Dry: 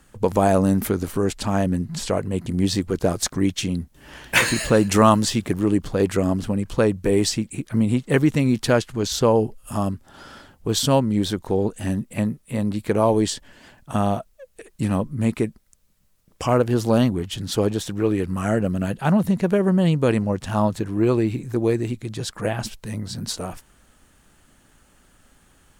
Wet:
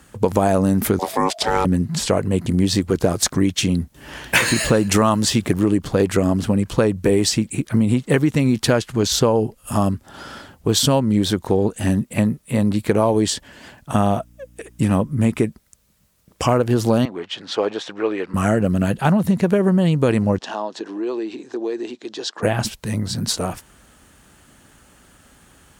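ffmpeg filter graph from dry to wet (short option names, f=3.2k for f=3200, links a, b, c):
-filter_complex "[0:a]asettb=1/sr,asplit=3[a][b][c];[a]atrim=end=0.994[d];[b]atrim=start=0.99:end=1.65,asetpts=PTS-STARTPTS,afade=t=in:d=0.004:c=qsin,afade=t=out:st=0.656:d=0.004:c=qsin,equalizer=f=4.2k:t=o:w=0.46:g=9.5,aeval=exprs='val(0)*sin(2*PI*660*n/s)':c=same[e];[c]atrim=start=1.646[f];[d][e]acrossfade=d=0.004:c1=hsin:c2=qsin[g];[g][f]acrossfade=d=0.004:c1=qsin:c2=hsin,asettb=1/sr,asplit=3[h][i][j];[h]atrim=end=13.944[k];[i]atrim=start=13.94:end=15.45,asetpts=PTS-STARTPTS,afade=t=in:d=0.004:c=qsin,afade=t=out:st=1.506:d=0.004:c=qsin,bandreject=f=4.2k:w=7.7,aeval=exprs='val(0)+0.002*(sin(2*PI*60*n/s)+sin(2*PI*2*60*n/s)/2+sin(2*PI*3*60*n/s)/3+sin(2*PI*4*60*n/s)/4+sin(2*PI*5*60*n/s)/5)':c=same[l];[j]atrim=start=15.446[m];[k][l]acrossfade=d=0.004:c1=hsin:c2=qsin[n];[n][m]acrossfade=d=0.004:c1=qsin:c2=hsin,asettb=1/sr,asplit=3[o][p][q];[o]atrim=end=17.054[r];[p]atrim=start=17.05:end=18.34,asetpts=PTS-STARTPTS,afade=t=in:d=0.004:c=qsin,afade=t=out:st=1.286:d=0.004:c=qsin,highpass=540,lowpass=5.3k,aemphasis=mode=reproduction:type=50fm[s];[q]atrim=start=18.336[t];[r][s]acrossfade=d=0.004:c1=hsin:c2=qsin[u];[u][t]acrossfade=d=0.004:c1=qsin:c2=hsin,asettb=1/sr,asplit=3[v][w][x];[v]atrim=end=20.384[y];[w]atrim=start=20.38:end=22.43,asetpts=PTS-STARTPTS,afade=t=in:d=0.004:c=qsin,afade=t=out:st=2.046:d=0.004:c=qsin,acompressor=threshold=-23dB:ratio=5:attack=3.2:release=140:knee=1:detection=peak,highpass=f=330:w=0.5412,highpass=f=330:w=1.3066,equalizer=f=530:t=q:w=4:g=-4,equalizer=f=1.3k:t=q:w=4:g=-6,equalizer=f=2.2k:t=q:w=4:g=-9,lowpass=f=6k:w=0.5412,lowpass=f=6k:w=1.3066[z];[x]atrim=start=22.426[aa];[y][z]acrossfade=d=0.004:c1=hsin:c2=qsin[ab];[ab][aa]acrossfade=d=0.004:c1=qsin:c2=hsin,highpass=49,acompressor=threshold=-19dB:ratio=6,volume=6.5dB"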